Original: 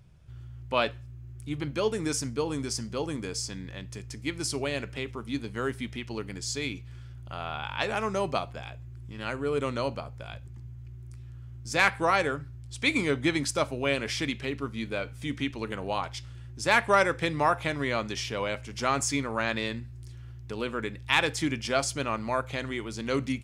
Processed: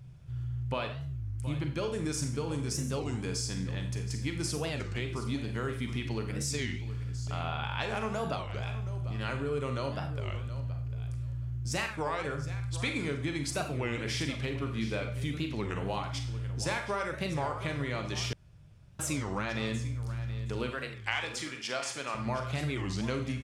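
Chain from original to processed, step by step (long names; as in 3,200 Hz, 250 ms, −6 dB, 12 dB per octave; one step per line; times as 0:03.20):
parametric band 130 Hz +9.5 dB 0.54 octaves
downward compressor 10 to 1, threshold −30 dBFS, peak gain reduction 14 dB
0:20.70–0:22.15: meter weighting curve A
repeating echo 722 ms, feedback 17%, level −14 dB
four-comb reverb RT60 0.49 s, combs from 32 ms, DRR 5.5 dB
0:18.33–0:19.00: fill with room tone
wow of a warped record 33 1/3 rpm, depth 250 cents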